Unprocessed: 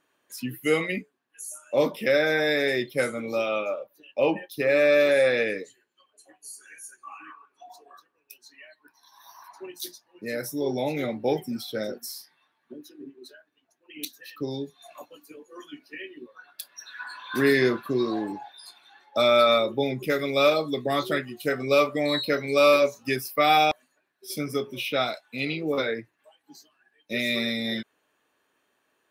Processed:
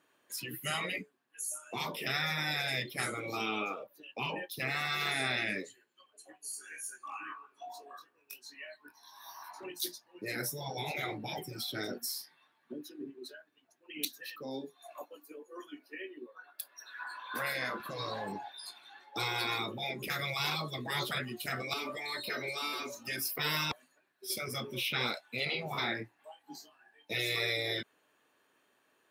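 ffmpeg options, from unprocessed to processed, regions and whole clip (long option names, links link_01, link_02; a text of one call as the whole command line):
ffmpeg -i in.wav -filter_complex "[0:a]asettb=1/sr,asplit=3[link_01][link_02][link_03];[link_01]atrim=end=6.514[link_04];[link_02]atrim=start=6.51:end=9.64,asetpts=PTS-STARTPTS,afade=type=in:duration=0.004:curve=qsin,afade=type=out:start_time=3.126:duration=0.004:curve=qsin,volume=34dB,asoftclip=hard,volume=-34dB,asplit=2[link_05][link_06];[link_06]adelay=21,volume=-3.5dB[link_07];[link_05][link_07]amix=inputs=2:normalize=0,atrim=end_sample=138033[link_08];[link_03]atrim=start=9.636[link_09];[link_04][link_08]acrossfade=duration=0.004:curve1=hsin:curve2=qsin[link_10];[link_10][link_09]acrossfade=duration=0.004:curve1=qsin:curve2=hsin,asettb=1/sr,asplit=3[link_11][link_12][link_13];[link_11]atrim=end=14.364[link_14];[link_12]atrim=start=14.36:end=17.8,asetpts=PTS-STARTPTS,afade=type=in:duration=0.004:curve=qsin,afade=type=out:start_time=3.436:duration=0.004:curve=qsin,highpass=350,equalizer=frequency=4200:width=0.44:gain=-8.5[link_15];[link_13]atrim=start=17.796[link_16];[link_14][link_15]acrossfade=duration=0.004:curve1=hsin:curve2=qsin[link_17];[link_17][link_16]acrossfade=duration=0.004:curve1=qsin:curve2=hsin,asettb=1/sr,asplit=3[link_18][link_19][link_20];[link_18]atrim=end=21.734[link_21];[link_19]atrim=start=21.73:end=23.39,asetpts=PTS-STARTPTS,afade=type=in:duration=0.004:curve=qsin,afade=type=out:start_time=1.656:duration=0.004:curve=qsin,aecho=1:1:3.3:0.9,atrim=end_sample=73206,acompressor=threshold=-30dB:ratio=2:attack=3.2:release=140:knee=1:detection=peak[link_22];[link_20]atrim=start=23.386[link_23];[link_21][link_22]acrossfade=duration=0.004:curve1=hsin:curve2=qsin[link_24];[link_24][link_23]acrossfade=duration=0.004:curve1=qsin:curve2=hsin,asettb=1/sr,asplit=3[link_25][link_26][link_27];[link_25]atrim=end=25.464[link_28];[link_26]atrim=start=25.46:end=27.15,asetpts=PTS-STARTPTS,afade=type=in:duration=0.004:curve=qsin,afade=type=out:start_time=1.686:duration=0.004:curve=qsin,equalizer=frequency=810:width=3.1:gain=10,asplit=2[link_29][link_30];[link_30]adelay=27,volume=-7dB[link_31];[link_29][link_31]amix=inputs=2:normalize=0,atrim=end_sample=74529[link_32];[link_27]atrim=start=27.146[link_33];[link_28][link_32]acrossfade=duration=0.004:curve1=hsin:curve2=qsin[link_34];[link_34][link_33]acrossfade=duration=0.004:curve1=qsin:curve2=hsin,afftfilt=real='re*lt(hypot(re,im),0.126)':imag='im*lt(hypot(re,im),0.126)':win_size=1024:overlap=0.75,highpass=78,bandreject=frequency=6000:width=27" out.wav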